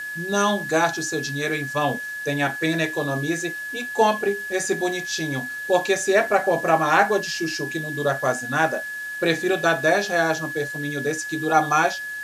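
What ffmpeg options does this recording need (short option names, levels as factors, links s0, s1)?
-af "adeclick=t=4,bandreject=f=1700:w=30,afwtdn=0.0056"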